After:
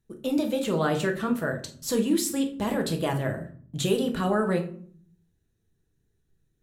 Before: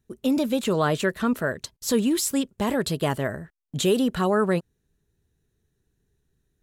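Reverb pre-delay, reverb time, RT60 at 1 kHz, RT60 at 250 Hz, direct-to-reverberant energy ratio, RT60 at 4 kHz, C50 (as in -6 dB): 6 ms, 0.50 s, 0.50 s, 0.90 s, 3.0 dB, 0.30 s, 11.0 dB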